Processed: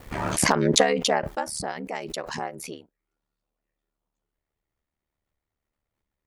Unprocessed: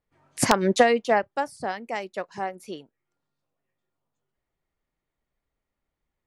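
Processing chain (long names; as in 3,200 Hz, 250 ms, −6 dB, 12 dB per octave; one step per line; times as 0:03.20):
ring modulation 37 Hz
background raised ahead of every attack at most 33 dB per second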